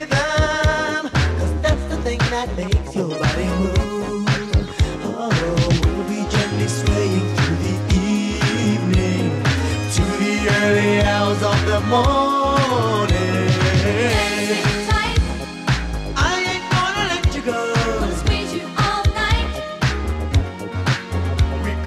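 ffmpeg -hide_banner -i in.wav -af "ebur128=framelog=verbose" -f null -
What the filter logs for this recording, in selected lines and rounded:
Integrated loudness:
  I:         -19.1 LUFS
  Threshold: -29.0 LUFS
Loudness range:
  LRA:         3.8 LU
  Threshold: -38.9 LUFS
  LRA low:   -20.7 LUFS
  LRA high:  -16.9 LUFS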